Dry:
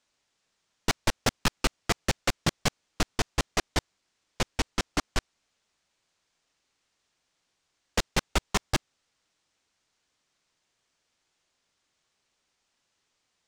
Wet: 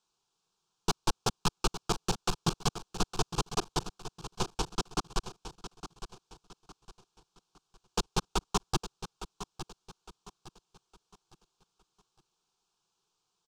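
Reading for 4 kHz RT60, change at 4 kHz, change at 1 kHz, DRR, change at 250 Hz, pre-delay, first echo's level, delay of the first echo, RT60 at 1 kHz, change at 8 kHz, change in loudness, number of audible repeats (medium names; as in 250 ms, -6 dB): no reverb, -4.0 dB, -1.0 dB, no reverb, -3.0 dB, no reverb, -12.0 dB, 860 ms, no reverb, -3.0 dB, -4.5 dB, 3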